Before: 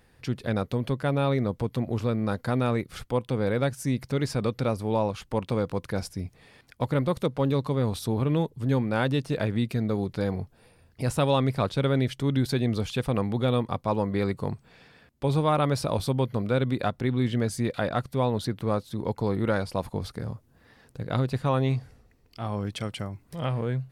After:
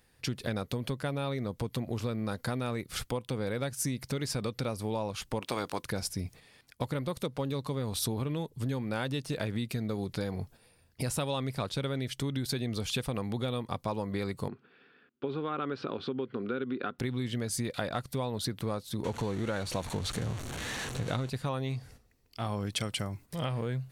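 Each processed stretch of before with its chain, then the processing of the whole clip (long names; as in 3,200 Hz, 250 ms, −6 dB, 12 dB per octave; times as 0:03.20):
0:05.40–0:05.82: ceiling on every frequency bin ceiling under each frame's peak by 14 dB + high-pass filter 150 Hz 6 dB per octave
0:14.48–0:16.99: downward compressor 2 to 1, threshold −29 dBFS + loudspeaker in its box 240–3,000 Hz, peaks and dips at 250 Hz +6 dB, 390 Hz +8 dB, 620 Hz −9 dB, 910 Hz −7 dB, 1,400 Hz +7 dB, 2,100 Hz −6 dB
0:19.04–0:21.30: converter with a step at zero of −33.5 dBFS + low-pass filter 7,300 Hz + notch filter 5,000 Hz, Q 5.5
whole clip: noise gate −48 dBFS, range −8 dB; downward compressor 6 to 1, threshold −30 dBFS; high-shelf EQ 2,900 Hz +9.5 dB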